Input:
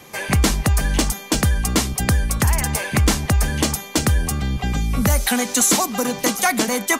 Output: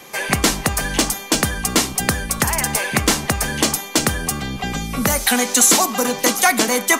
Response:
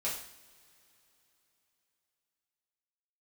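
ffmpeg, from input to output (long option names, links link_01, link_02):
-filter_complex "[0:a]equalizer=frequency=62:width_type=o:width=2.4:gain=-14.5,bandreject=frequency=101.1:width_type=h:width=4,bandreject=frequency=202.2:width_type=h:width=4,bandreject=frequency=303.3:width_type=h:width=4,bandreject=frequency=404.4:width_type=h:width=4,bandreject=frequency=505.5:width_type=h:width=4,bandreject=frequency=606.6:width_type=h:width=4,bandreject=frequency=707.7:width_type=h:width=4,bandreject=frequency=808.8:width_type=h:width=4,bandreject=frequency=909.9:width_type=h:width=4,bandreject=frequency=1011:width_type=h:width=4,bandreject=frequency=1112.1:width_type=h:width=4,bandreject=frequency=1213.2:width_type=h:width=4,bandreject=frequency=1314.3:width_type=h:width=4,asplit=2[link_01][link_02];[1:a]atrim=start_sample=2205,atrim=end_sample=6615[link_03];[link_02][link_03]afir=irnorm=-1:irlink=0,volume=-20.5dB[link_04];[link_01][link_04]amix=inputs=2:normalize=0,volume=3.5dB"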